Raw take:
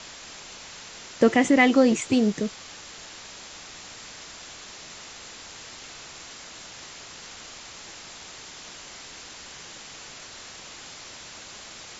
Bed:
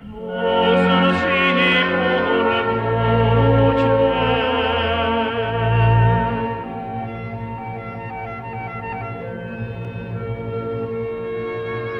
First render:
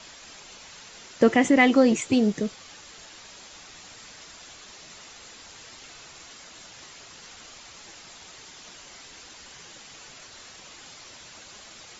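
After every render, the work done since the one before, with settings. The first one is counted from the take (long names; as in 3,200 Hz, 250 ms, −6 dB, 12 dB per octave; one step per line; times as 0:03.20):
broadband denoise 6 dB, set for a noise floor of −43 dBFS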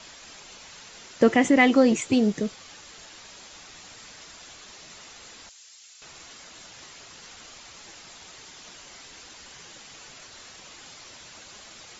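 0:05.49–0:06.02: first difference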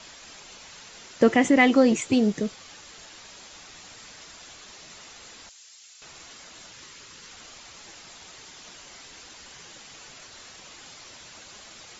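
0:06.72–0:07.33: parametric band 710 Hz −13 dB 0.3 octaves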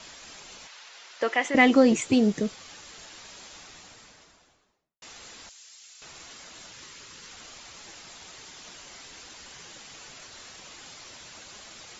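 0:00.67–0:01.55: band-pass filter 720–5,400 Hz
0:03.49–0:05.02: fade out and dull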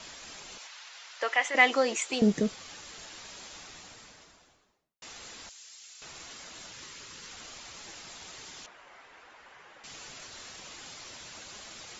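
0:00.58–0:02.22: high-pass filter 680 Hz
0:08.66–0:09.84: three-way crossover with the lows and the highs turned down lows −14 dB, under 460 Hz, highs −22 dB, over 2,300 Hz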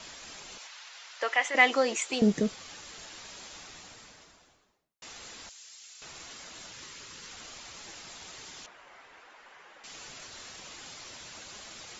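0:09.20–0:09.95: parametric band 85 Hz −14.5 dB 1.3 octaves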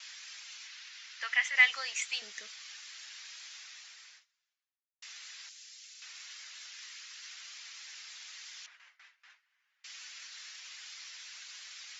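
noise gate with hold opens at −42 dBFS
Chebyshev band-pass filter 1,800–5,900 Hz, order 2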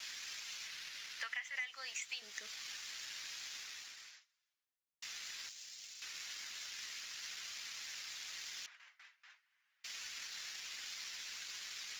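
leveller curve on the samples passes 1
downward compressor 8 to 1, threshold −40 dBFS, peak gain reduction 23 dB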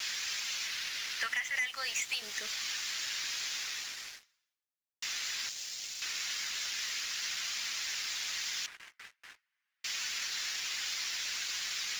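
leveller curve on the samples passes 3
reversed playback
upward compression, threshold −58 dBFS
reversed playback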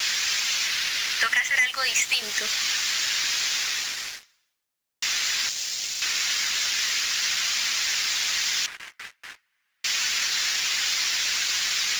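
level +11.5 dB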